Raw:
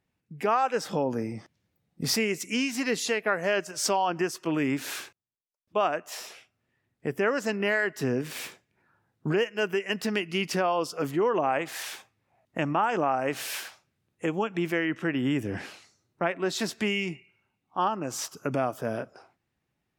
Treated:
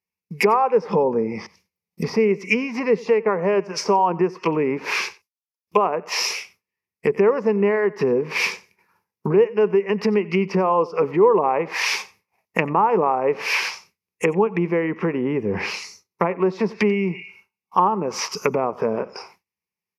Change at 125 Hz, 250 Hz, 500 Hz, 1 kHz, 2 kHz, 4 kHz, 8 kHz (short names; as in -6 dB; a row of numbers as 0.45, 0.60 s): +6.5, +6.0, +10.0, +7.5, +5.0, +4.0, +1.5 dB